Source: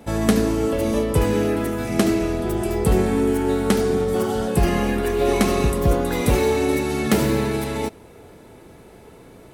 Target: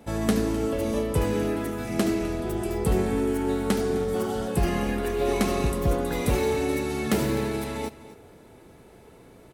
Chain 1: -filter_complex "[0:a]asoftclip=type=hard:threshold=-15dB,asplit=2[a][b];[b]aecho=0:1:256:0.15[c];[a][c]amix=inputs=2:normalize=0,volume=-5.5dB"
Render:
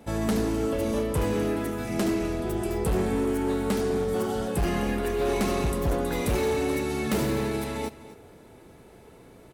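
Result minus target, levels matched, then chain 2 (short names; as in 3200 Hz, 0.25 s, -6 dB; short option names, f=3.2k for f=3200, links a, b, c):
hard clip: distortion +19 dB
-filter_complex "[0:a]asoftclip=type=hard:threshold=-8dB,asplit=2[a][b];[b]aecho=0:1:256:0.15[c];[a][c]amix=inputs=2:normalize=0,volume=-5.5dB"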